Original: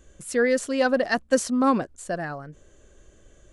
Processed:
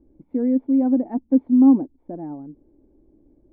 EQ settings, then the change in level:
formant resonators in series u
parametric band 260 Hz +6.5 dB 0.31 octaves
high-shelf EQ 2,600 Hz +10.5 dB
+8.0 dB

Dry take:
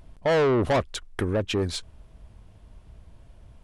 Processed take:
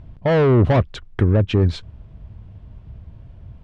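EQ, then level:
low-pass filter 3,600 Hz 12 dB per octave
parametric band 110 Hz +12.5 dB 2.2 octaves
+2.0 dB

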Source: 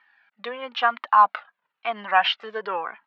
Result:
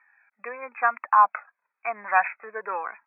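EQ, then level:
high-pass filter 650 Hz 6 dB per octave
linear-phase brick-wall low-pass 2,600 Hz
0.0 dB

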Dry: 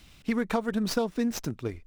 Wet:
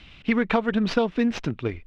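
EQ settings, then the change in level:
low-pass with resonance 2,900 Hz, resonance Q 1.9
+5.0 dB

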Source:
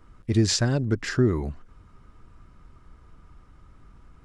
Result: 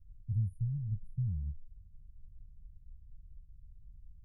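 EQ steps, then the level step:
linear-phase brick-wall band-stop 210–9,200 Hz
guitar amp tone stack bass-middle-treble 10-0-1
low-shelf EQ 330 Hz +11 dB
−6.5 dB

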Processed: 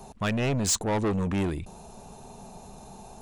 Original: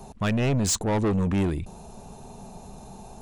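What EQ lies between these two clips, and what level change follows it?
low-shelf EQ 360 Hz −4.5 dB
0.0 dB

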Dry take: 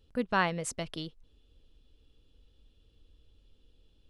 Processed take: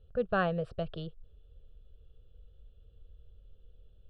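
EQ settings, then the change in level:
high-frequency loss of the air 230 metres
tilt shelving filter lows +5.5 dB, about 1,100 Hz
phaser with its sweep stopped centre 1,400 Hz, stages 8
+2.0 dB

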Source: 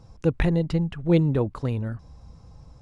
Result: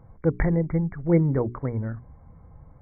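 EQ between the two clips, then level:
linear-phase brick-wall low-pass 2,300 Hz
mains-hum notches 60/120/180/240/300/360/420 Hz
0.0 dB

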